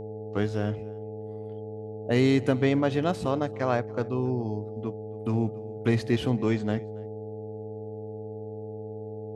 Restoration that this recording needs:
hum removal 105.4 Hz, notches 8
notch filter 440 Hz, Q 30
echo removal 278 ms −23 dB

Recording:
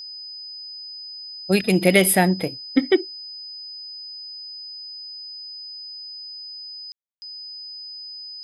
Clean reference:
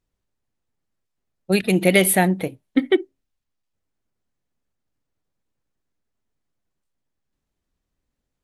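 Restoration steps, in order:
notch filter 5,000 Hz, Q 30
ambience match 0:06.92–0:07.22

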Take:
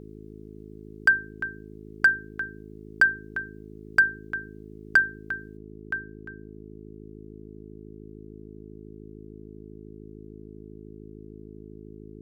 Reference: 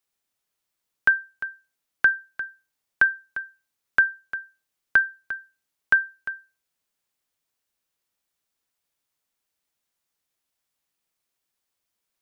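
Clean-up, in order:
clipped peaks rebuilt −10.5 dBFS
hum removal 53 Hz, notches 8
level 0 dB, from 0:05.57 +12 dB

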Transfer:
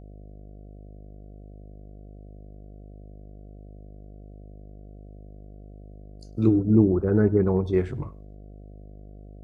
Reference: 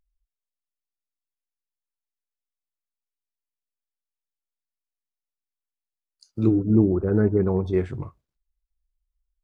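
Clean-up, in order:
hum removal 50.7 Hz, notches 14
echo removal 100 ms −23.5 dB

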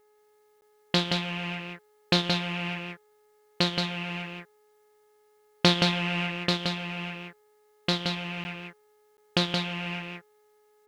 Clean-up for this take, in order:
hum removal 421.8 Hz, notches 5
repair the gap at 0:00.61/0:08.44/0:09.17, 10 ms
echo removal 173 ms −4 dB

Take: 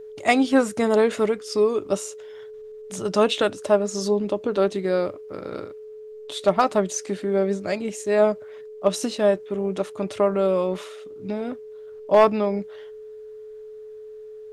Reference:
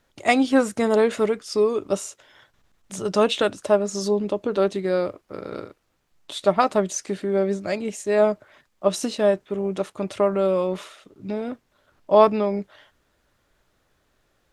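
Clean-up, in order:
clipped peaks rebuilt −6.5 dBFS
notch filter 430 Hz, Q 30

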